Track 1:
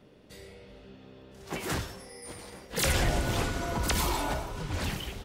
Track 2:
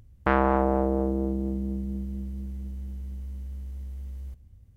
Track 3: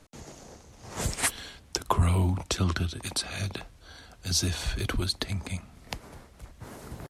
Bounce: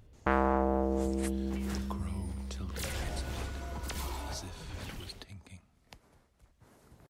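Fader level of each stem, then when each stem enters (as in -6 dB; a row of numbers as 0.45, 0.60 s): -11.5, -5.5, -17.0 dB; 0.00, 0.00, 0.00 s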